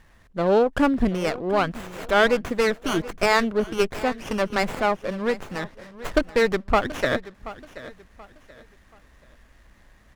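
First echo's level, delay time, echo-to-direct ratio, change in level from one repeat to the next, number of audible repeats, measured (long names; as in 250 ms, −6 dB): −16.5 dB, 730 ms, −16.0 dB, −10.0 dB, 2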